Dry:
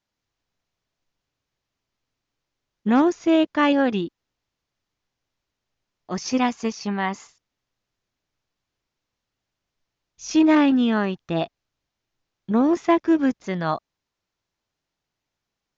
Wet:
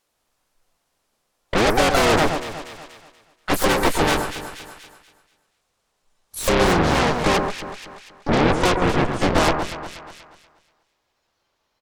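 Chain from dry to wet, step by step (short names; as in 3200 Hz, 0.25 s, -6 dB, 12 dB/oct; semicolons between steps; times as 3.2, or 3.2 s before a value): speed glide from 191% -> 76%; limiter -13 dBFS, peak gain reduction 3.5 dB; compressor 16:1, threshold -24 dBFS, peak gain reduction 9 dB; spectral noise reduction 9 dB; band shelf 670 Hz +8 dB; harmoniser -12 st -5 dB, -5 st -5 dB, +5 st -2 dB; soft clip -14.5 dBFS, distortion -14 dB; added harmonics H 4 -7 dB, 7 -7 dB, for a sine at -14.5 dBFS; low shelf 83 Hz +6 dB; on a send: echo with dull and thin repeats by turns 0.12 s, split 1700 Hz, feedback 57%, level -5 dB; on the sum: mismatched tape noise reduction encoder only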